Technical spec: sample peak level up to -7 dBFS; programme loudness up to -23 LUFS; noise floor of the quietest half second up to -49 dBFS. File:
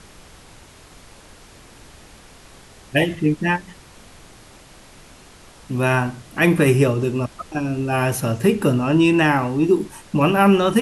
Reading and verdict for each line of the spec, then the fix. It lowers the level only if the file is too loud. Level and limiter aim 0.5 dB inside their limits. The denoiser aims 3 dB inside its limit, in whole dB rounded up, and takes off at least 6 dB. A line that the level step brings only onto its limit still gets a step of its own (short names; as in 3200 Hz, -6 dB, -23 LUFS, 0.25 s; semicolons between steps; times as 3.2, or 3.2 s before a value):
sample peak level -5.0 dBFS: fail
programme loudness -19.0 LUFS: fail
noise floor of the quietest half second -45 dBFS: fail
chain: gain -4.5 dB